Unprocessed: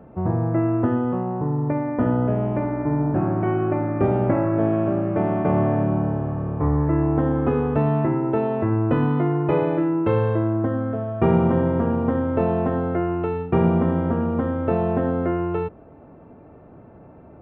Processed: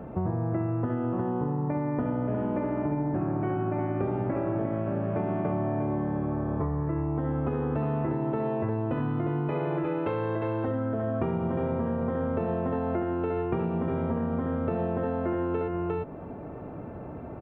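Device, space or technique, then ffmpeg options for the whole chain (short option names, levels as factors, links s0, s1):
serial compression, peaks first: -filter_complex "[0:a]asettb=1/sr,asplit=3[s0][s1][s2];[s0]atrim=end=9.484[s3];[s1]atrim=start=9.48:end=10.68,asetpts=PTS-STARTPTS,afade=t=in:d=0.004:c=qsin,afade=t=out:st=1.196:d=0.004:c=qsin,lowshelf=f=380:g=-8.5[s4];[s2]atrim=start=10.676[s5];[s3][s4]acrossfade=d=0.004:c1=hsin:c2=qsin[s6];[s6][s5]acrossfade=d=0.004:c1=qsin:c2=hsin,aecho=1:1:354:0.531,acompressor=threshold=0.0447:ratio=6,acompressor=threshold=0.0126:ratio=1.5,volume=1.88"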